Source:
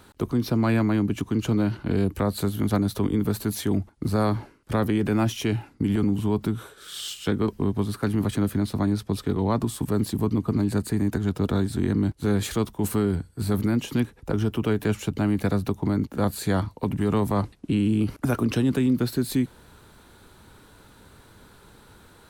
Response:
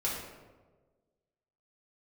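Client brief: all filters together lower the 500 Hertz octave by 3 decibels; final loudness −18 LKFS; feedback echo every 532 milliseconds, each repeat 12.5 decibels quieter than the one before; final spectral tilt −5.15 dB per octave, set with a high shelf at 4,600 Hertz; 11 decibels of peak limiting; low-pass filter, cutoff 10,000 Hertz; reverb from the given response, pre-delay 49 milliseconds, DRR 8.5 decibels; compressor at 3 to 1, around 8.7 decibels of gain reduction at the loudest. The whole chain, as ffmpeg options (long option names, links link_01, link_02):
-filter_complex "[0:a]lowpass=10000,equalizer=frequency=500:width_type=o:gain=-4,highshelf=frequency=4600:gain=4.5,acompressor=threshold=-31dB:ratio=3,alimiter=level_in=6dB:limit=-24dB:level=0:latency=1,volume=-6dB,aecho=1:1:532|1064|1596:0.237|0.0569|0.0137,asplit=2[link_01][link_02];[1:a]atrim=start_sample=2205,adelay=49[link_03];[link_02][link_03]afir=irnorm=-1:irlink=0,volume=-14.5dB[link_04];[link_01][link_04]amix=inputs=2:normalize=0,volume=20.5dB"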